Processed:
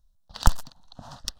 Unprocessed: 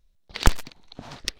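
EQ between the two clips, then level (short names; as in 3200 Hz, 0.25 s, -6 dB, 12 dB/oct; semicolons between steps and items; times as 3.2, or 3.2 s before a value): fixed phaser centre 930 Hz, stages 4; 0.0 dB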